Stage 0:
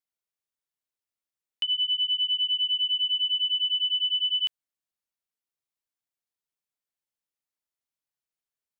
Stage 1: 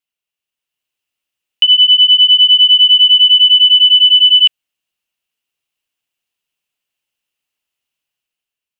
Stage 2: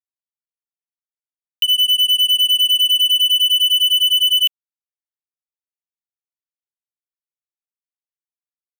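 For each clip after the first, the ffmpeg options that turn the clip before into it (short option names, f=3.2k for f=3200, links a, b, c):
-filter_complex "[0:a]acrossover=split=2900[a][b];[b]acompressor=threshold=-32dB:ratio=4:attack=1:release=60[c];[a][c]amix=inputs=2:normalize=0,equalizer=f=2.8k:w=3.3:g=14,dynaudnorm=f=200:g=7:m=6.5dB,volume=3dB"
-af "aeval=exprs='0.891*(cos(1*acos(clip(val(0)/0.891,-1,1)))-cos(1*PI/2))+0.0141*(cos(2*acos(clip(val(0)/0.891,-1,1)))-cos(2*PI/2))+0.0112*(cos(6*acos(clip(val(0)/0.891,-1,1)))-cos(6*PI/2))+0.0447*(cos(7*acos(clip(val(0)/0.891,-1,1)))-cos(7*PI/2))+0.0126*(cos(8*acos(clip(val(0)/0.891,-1,1)))-cos(8*PI/2))':c=same,acrusher=bits=7:mix=0:aa=0.5,aderivative"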